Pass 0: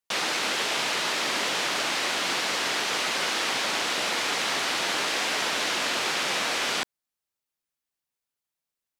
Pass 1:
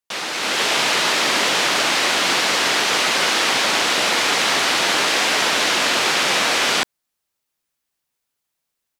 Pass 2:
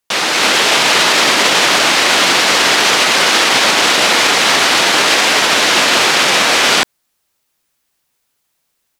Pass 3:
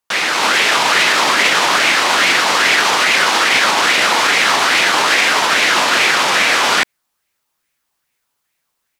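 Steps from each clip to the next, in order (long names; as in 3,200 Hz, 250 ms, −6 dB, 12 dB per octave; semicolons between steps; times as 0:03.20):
automatic gain control gain up to 9 dB
boost into a limiter +12 dB; level −1 dB
auto-filter bell 2.4 Hz 900–2,300 Hz +9 dB; level −5 dB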